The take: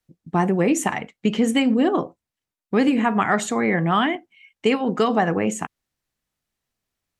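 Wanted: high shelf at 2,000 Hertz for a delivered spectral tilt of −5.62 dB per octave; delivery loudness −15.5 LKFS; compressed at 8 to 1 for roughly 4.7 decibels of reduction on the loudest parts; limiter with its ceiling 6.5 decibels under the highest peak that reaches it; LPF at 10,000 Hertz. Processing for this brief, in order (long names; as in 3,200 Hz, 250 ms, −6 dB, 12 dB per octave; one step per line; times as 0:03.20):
low-pass filter 10,000 Hz
high-shelf EQ 2,000 Hz −4 dB
downward compressor 8 to 1, threshold −19 dBFS
level +11.5 dB
brickwall limiter −5.5 dBFS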